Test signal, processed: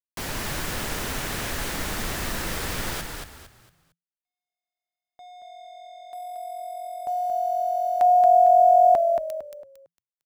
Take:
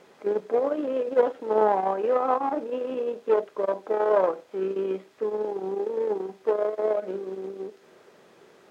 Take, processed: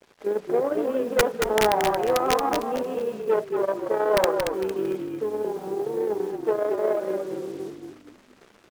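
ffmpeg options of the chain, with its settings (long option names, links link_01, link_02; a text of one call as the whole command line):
ffmpeg -i in.wav -filter_complex "[0:a]adynamicequalizer=threshold=0.00708:dfrequency=1700:dqfactor=2.3:tfrequency=1700:tqfactor=2.3:attack=5:release=100:ratio=0.375:range=2:mode=boostabove:tftype=bell,aeval=exprs='(mod(3.55*val(0)+1,2)-1)/3.55':channel_layout=same,acrusher=bits=7:mix=0:aa=0.5,asplit=2[link_01][link_02];[link_02]asplit=4[link_03][link_04][link_05][link_06];[link_03]adelay=227,afreqshift=-44,volume=-5dB[link_07];[link_04]adelay=454,afreqshift=-88,volume=-14.9dB[link_08];[link_05]adelay=681,afreqshift=-132,volume=-24.8dB[link_09];[link_06]adelay=908,afreqshift=-176,volume=-34.7dB[link_10];[link_07][link_08][link_09][link_10]amix=inputs=4:normalize=0[link_11];[link_01][link_11]amix=inputs=2:normalize=0" out.wav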